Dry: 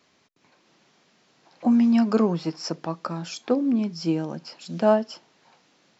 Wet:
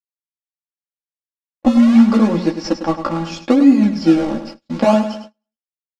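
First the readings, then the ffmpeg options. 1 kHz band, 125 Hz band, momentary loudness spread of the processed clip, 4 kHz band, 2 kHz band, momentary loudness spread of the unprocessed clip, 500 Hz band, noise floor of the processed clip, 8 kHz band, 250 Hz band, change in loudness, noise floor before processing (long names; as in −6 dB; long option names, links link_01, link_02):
+8.0 dB, +7.0 dB, 13 LU, +5.5 dB, +9.0 dB, 14 LU, +5.5 dB, below −85 dBFS, can't be measured, +10.0 dB, +9.0 dB, −64 dBFS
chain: -filter_complex "[0:a]highpass=66,bandreject=frequency=60:width_type=h:width=6,bandreject=frequency=120:width_type=h:width=6,bandreject=frequency=180:width_type=h:width=6,aeval=exprs='sgn(val(0))*max(abs(val(0))-0.00562,0)':channel_layout=same,highshelf=frequency=2900:gain=-6,asplit=2[link_01][link_02];[link_02]acrusher=samples=38:mix=1:aa=0.000001:lfo=1:lforange=38:lforate=0.74,volume=-9.5dB[link_03];[link_01][link_03]amix=inputs=2:normalize=0,acompressor=threshold=-21dB:ratio=4,flanger=delay=9.7:depth=8.8:regen=-19:speed=1.1:shape=sinusoidal,aecho=1:1:3.6:0.73,asplit=2[link_04][link_05];[link_05]aecho=0:1:103|206|309|412|515:0.316|0.136|0.0585|0.0251|0.0108[link_06];[link_04][link_06]amix=inputs=2:normalize=0,dynaudnorm=framelen=490:gausssize=5:maxgain=14dB,agate=range=-33dB:threshold=-34dB:ratio=16:detection=peak,lowpass=5900,volume=1.5dB"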